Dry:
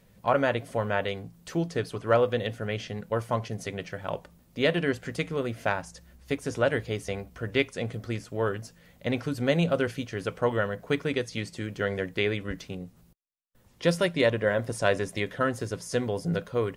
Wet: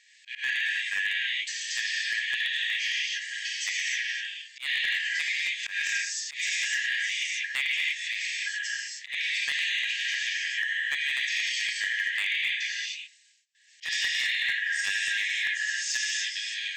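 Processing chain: 5.63–6.47 s: treble shelf 3.5 kHz +8.5 dB; gated-style reverb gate 340 ms flat, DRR -7.5 dB; FFT band-pass 1.6–8.2 kHz; compression 5:1, threshold -33 dBFS, peak gain reduction 11 dB; hard clipper -27.5 dBFS, distortion -22 dB; slow attack 119 ms; trim +7.5 dB

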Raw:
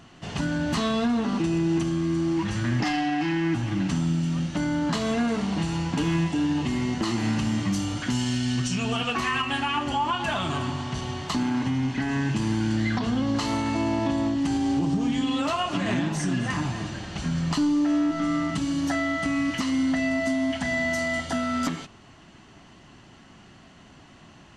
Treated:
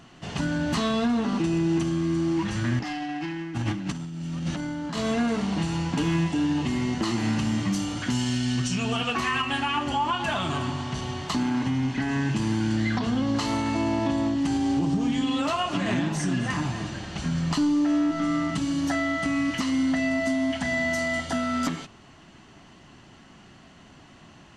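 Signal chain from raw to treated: hum notches 50/100 Hz; 2.79–5.04 s: compressor with a negative ratio -29 dBFS, ratio -0.5

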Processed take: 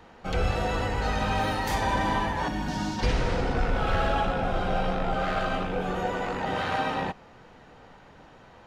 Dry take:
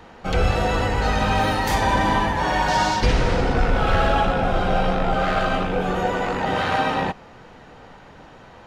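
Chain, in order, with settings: 2.48–2.99 s: graphic EQ 250/500/1000/2000/4000/8000 Hz +11/-10/-7/-6/-4/-4 dB; trim -6.5 dB

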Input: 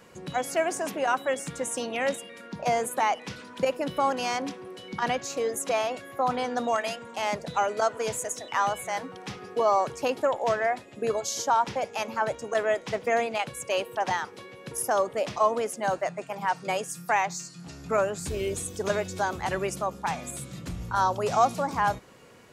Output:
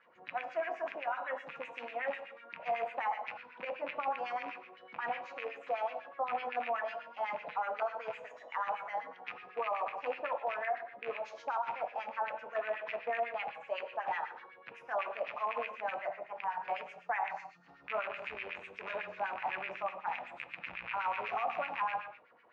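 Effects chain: rattle on loud lows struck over -37 dBFS, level -16 dBFS; on a send at -3 dB: reverberation, pre-delay 4 ms; on the sum: LFO band-pass sine 8 Hz 710–2200 Hz; peak limiter -21 dBFS, peak gain reduction 8 dB; distance through air 220 m; trim -3 dB

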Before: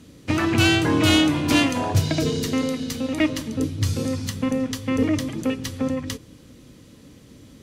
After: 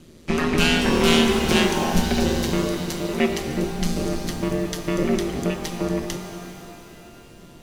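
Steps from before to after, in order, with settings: ring modulator 81 Hz; pitch-shifted reverb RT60 3.1 s, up +12 st, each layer -8 dB, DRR 5 dB; trim +2 dB

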